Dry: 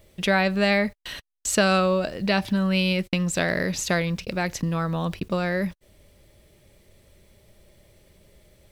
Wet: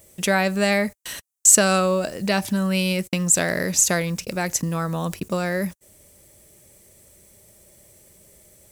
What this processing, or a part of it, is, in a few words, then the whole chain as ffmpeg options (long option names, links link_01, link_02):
budget condenser microphone: -af "highpass=frequency=100:poles=1,highshelf=frequency=5400:width_type=q:width=1.5:gain=11,volume=1.5dB"